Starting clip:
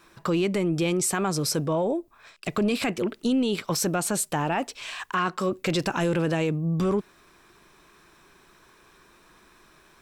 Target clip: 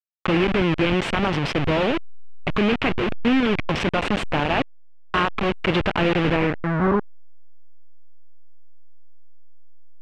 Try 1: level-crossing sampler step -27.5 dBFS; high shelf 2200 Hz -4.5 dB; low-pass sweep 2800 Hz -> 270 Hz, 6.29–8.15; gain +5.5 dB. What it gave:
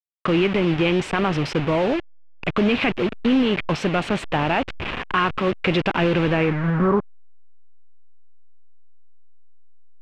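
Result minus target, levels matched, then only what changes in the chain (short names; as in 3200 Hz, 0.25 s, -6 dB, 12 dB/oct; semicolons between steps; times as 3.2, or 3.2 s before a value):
level-crossing sampler: distortion -8 dB
change: level-crossing sampler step -21.5 dBFS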